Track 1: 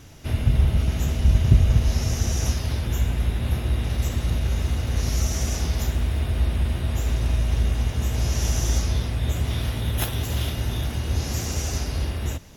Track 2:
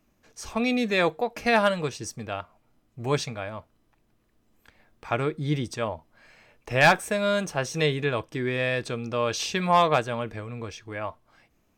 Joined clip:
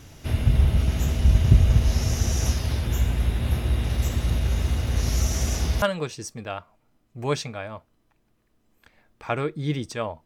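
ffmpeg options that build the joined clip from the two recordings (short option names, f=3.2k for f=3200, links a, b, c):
-filter_complex "[0:a]apad=whole_dur=10.25,atrim=end=10.25,atrim=end=5.822[a];[1:a]atrim=start=1.638:end=6.07[b];[a][b]acrossfade=d=0.004:c1=hsin:c2=hsin"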